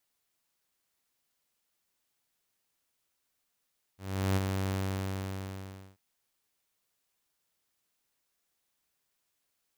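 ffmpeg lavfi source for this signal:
ffmpeg -f lavfi -i "aevalsrc='0.0794*(2*mod(96*t,1)-1)':duration=1.99:sample_rate=44100,afade=type=in:duration=0.385,afade=type=out:start_time=0.385:duration=0.025:silence=0.562,afade=type=out:start_time=0.74:duration=1.25" out.wav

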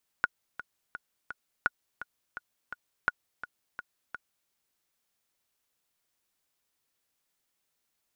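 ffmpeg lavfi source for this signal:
ffmpeg -f lavfi -i "aevalsrc='pow(10,(-11-14*gte(mod(t,4*60/169),60/169))/20)*sin(2*PI*1450*mod(t,60/169))*exp(-6.91*mod(t,60/169)/0.03)':duration=4.26:sample_rate=44100" out.wav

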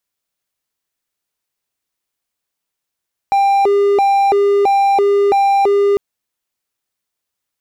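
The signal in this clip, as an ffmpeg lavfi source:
ffmpeg -f lavfi -i "aevalsrc='0.422*(1-4*abs(mod((598*t+195/1.5*(0.5-abs(mod(1.5*t,1)-0.5)))+0.25,1)-0.5))':duration=2.65:sample_rate=44100" out.wav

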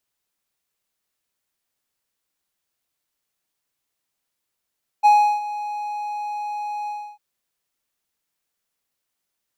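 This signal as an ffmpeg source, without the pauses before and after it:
ffmpeg -f lavfi -i "aevalsrc='0.447*(1-4*abs(mod(834*t+0.25,1)-0.5))':duration=2.149:sample_rate=44100,afade=type=in:duration=0.026,afade=type=out:start_time=0.026:duration=0.347:silence=0.15,afade=type=out:start_time=1.85:duration=0.299" out.wav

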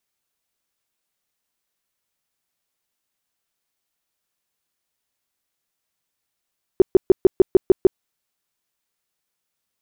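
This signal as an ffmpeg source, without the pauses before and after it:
ffmpeg -f lavfi -i "aevalsrc='0.501*sin(2*PI*377*mod(t,0.15))*lt(mod(t,0.15),7/377)':duration=1.2:sample_rate=44100" out.wav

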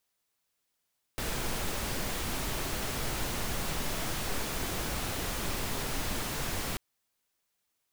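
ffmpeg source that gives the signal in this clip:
ffmpeg -f lavfi -i "anoisesrc=color=pink:amplitude=0.115:duration=5.59:sample_rate=44100:seed=1" out.wav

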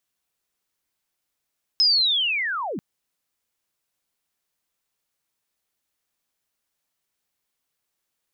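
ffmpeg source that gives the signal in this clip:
ffmpeg -f lavfi -i "aevalsrc='pow(10,(-14-13*t/0.99)/20)*sin(2*PI*(5200*t-5050*t*t/(2*0.99)))':duration=0.99:sample_rate=44100" out.wav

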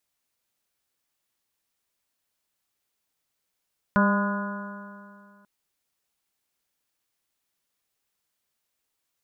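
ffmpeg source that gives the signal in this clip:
ffmpeg -f lavfi -i "aevalsrc='0.126*pow(10,-3*t/2.3)*sin(2*PI*200.15*t)+0.0224*pow(10,-3*t/2.3)*sin(2*PI*401.2*t)+0.0531*pow(10,-3*t/2.3)*sin(2*PI*604.04*t)+0.0141*pow(10,-3*t/2.3)*sin(2*PI*809.54*t)+0.0708*pow(10,-3*t/2.3)*sin(2*PI*1018.58*t)+0.0316*pow(10,-3*t/2.3)*sin(2*PI*1231.97*t)+0.0668*pow(10,-3*t/2.3)*sin(2*PI*1450.54*t)+0.0141*pow(10,-3*t/2.3)*sin(2*PI*1675.04*t)':duration=1.49:sample_rate=44100" out.wav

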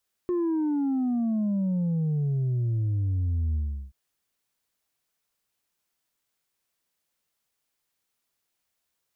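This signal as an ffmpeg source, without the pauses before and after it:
ffmpeg -f lavfi -i "aevalsrc='0.0668*clip((3.63-t)/0.37,0,1)*tanh(1.33*sin(2*PI*360*3.63/log(65/360)*(exp(log(65/360)*t/3.63)-1)))/tanh(1.33)':duration=3.63:sample_rate=44100" out.wav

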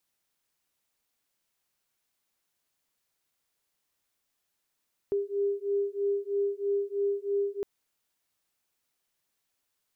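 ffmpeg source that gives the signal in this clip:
ffmpeg -f lavfi -i "aevalsrc='0.0335*(sin(2*PI*400*t)+sin(2*PI*403.1*t))':duration=2.51:sample_rate=44100" out.wav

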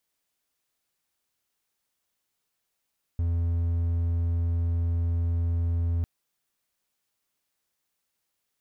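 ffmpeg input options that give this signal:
ffmpeg -f lavfi -i "aevalsrc='0.0891*(1-4*abs(mod(84.7*t+0.25,1)-0.5))':duration=2.85:sample_rate=44100" out.wav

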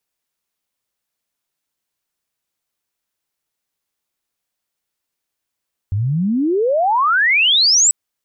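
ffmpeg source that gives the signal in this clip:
ffmpeg -f lavfi -i "aevalsrc='pow(10,(-15.5+6.5*t/1.99)/20)*sin(2*PI*93*1.99/log(8000/93)*(exp(log(8000/93)*t/1.99)-1))':duration=1.99:sample_rate=44100" out.wav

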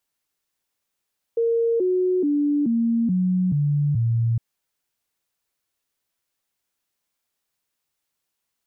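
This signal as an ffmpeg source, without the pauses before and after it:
ffmpeg -f lavfi -i "aevalsrc='0.133*clip(min(mod(t,0.43),0.43-mod(t,0.43))/0.005,0,1)*sin(2*PI*462*pow(2,-floor(t/0.43)/3)*mod(t,0.43))':duration=3.01:sample_rate=44100" out.wav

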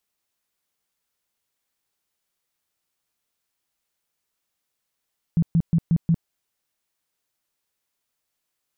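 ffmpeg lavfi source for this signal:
ffmpeg -f lavfi -i "aevalsrc='0.188*sin(2*PI*166*mod(t,0.18))*lt(mod(t,0.18),9/166)':duration=0.9:sample_rate=44100" out.wav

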